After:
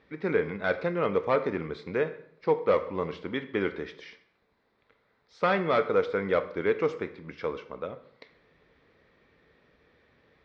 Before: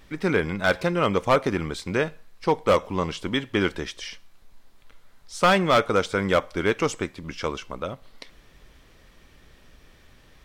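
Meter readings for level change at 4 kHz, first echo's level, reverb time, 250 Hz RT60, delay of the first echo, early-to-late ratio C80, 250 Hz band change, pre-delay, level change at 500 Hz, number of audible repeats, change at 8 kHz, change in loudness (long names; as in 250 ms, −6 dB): −13.0 dB, no echo audible, 0.70 s, 0.75 s, no echo audible, 16.5 dB, −7.0 dB, 15 ms, −2.5 dB, no echo audible, below −25 dB, −4.5 dB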